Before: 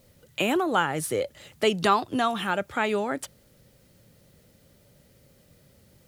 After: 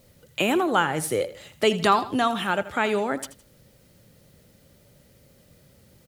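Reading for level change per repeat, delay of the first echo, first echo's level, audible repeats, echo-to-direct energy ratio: −8.5 dB, 81 ms, −15.0 dB, 2, −14.5 dB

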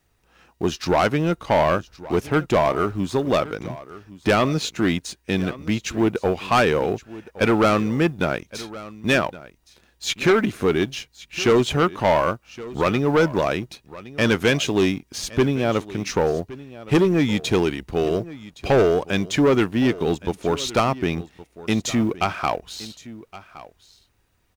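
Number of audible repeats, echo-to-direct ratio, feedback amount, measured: 1, −18.0 dB, repeats not evenly spaced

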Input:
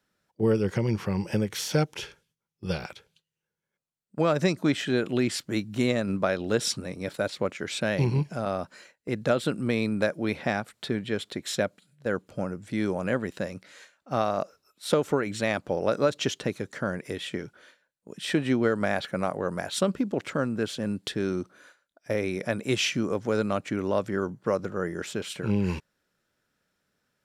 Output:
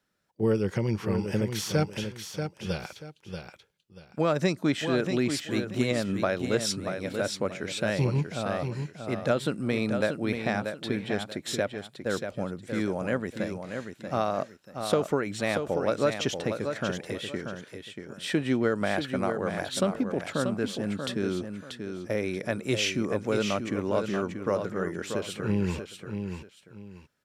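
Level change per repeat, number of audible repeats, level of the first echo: −11.5 dB, 2, −7.0 dB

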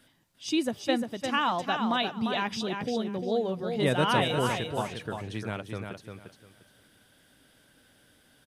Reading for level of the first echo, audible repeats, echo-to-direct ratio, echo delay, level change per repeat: −6.0 dB, 3, −6.0 dB, 349 ms, −13.0 dB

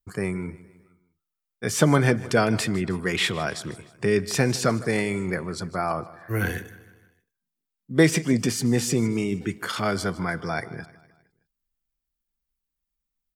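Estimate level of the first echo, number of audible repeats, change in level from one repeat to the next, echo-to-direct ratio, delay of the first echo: −18.5 dB, 3, −6.0 dB, −17.5 dB, 155 ms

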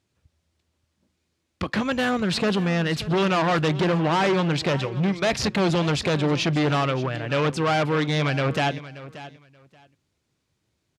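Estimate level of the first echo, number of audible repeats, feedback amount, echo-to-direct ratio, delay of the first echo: −16.0 dB, 2, 18%, −16.0 dB, 580 ms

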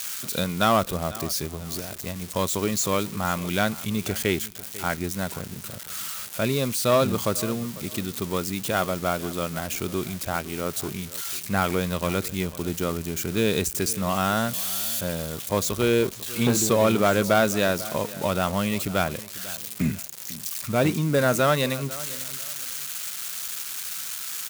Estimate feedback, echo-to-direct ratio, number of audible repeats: 27%, −17.5 dB, 2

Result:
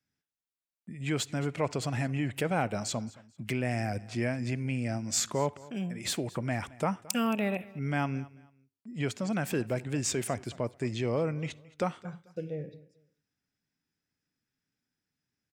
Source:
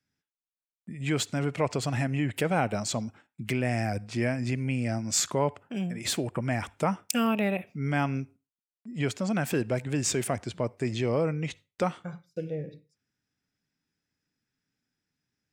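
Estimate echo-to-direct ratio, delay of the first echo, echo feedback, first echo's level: −20.5 dB, 220 ms, 27%, −21.0 dB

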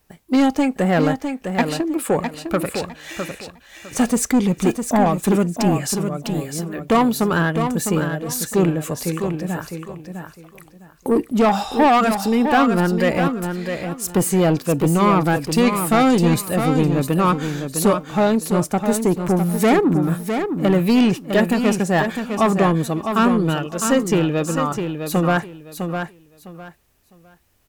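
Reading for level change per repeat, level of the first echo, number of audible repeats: −13.0 dB, −7.0 dB, 3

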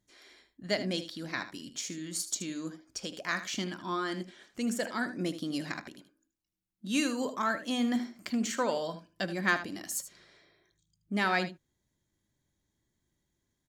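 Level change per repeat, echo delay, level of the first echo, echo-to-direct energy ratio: repeats not evenly spaced, 77 ms, −12.0 dB, −12.0 dB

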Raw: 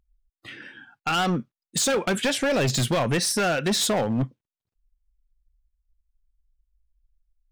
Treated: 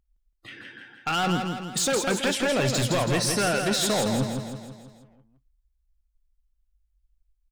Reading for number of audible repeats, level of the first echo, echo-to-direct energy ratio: 6, −5.5 dB, −4.0 dB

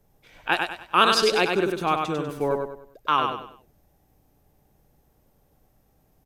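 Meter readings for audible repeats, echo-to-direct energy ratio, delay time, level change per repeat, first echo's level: 4, −4.0 dB, 98 ms, −9.0 dB, −4.5 dB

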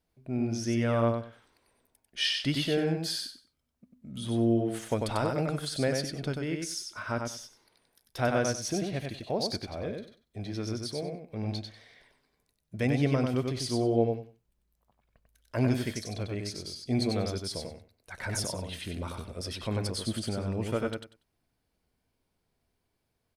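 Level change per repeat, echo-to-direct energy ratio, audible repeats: −14.5 dB, −4.0 dB, 3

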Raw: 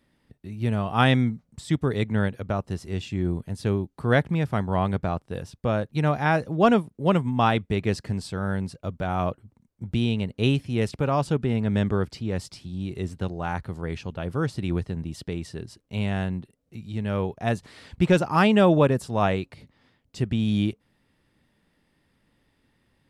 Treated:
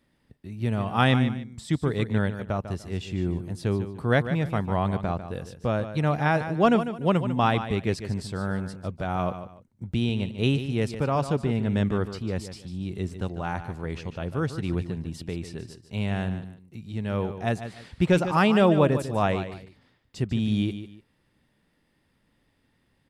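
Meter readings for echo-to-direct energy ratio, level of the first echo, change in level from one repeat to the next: −10.5 dB, −11.0 dB, −11.5 dB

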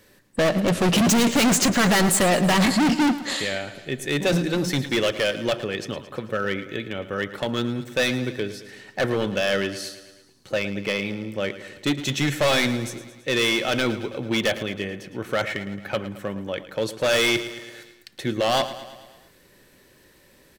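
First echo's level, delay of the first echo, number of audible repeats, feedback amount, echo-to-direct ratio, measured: −14.0 dB, 110 ms, 5, 59%, −12.0 dB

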